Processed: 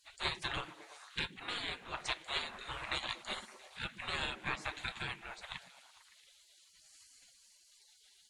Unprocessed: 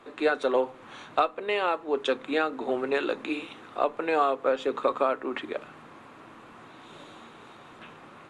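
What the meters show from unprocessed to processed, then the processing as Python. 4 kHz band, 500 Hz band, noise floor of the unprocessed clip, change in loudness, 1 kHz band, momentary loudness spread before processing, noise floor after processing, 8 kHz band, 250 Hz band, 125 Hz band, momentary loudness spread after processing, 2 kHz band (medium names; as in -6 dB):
+0.5 dB, -24.5 dB, -50 dBFS, -11.5 dB, -15.0 dB, 22 LU, -66 dBFS, no reading, -19.0 dB, +3.0 dB, 16 LU, -6.5 dB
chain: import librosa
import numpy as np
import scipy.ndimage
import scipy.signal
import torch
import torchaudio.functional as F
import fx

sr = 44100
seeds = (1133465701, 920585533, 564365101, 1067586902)

y = fx.octave_divider(x, sr, octaves=1, level_db=-4.0)
y = fx.spec_gate(y, sr, threshold_db=-25, keep='weak')
y = fx.echo_stepped(y, sr, ms=113, hz=240.0, octaves=0.7, feedback_pct=70, wet_db=-6.0)
y = y * librosa.db_to_amplitude(5.5)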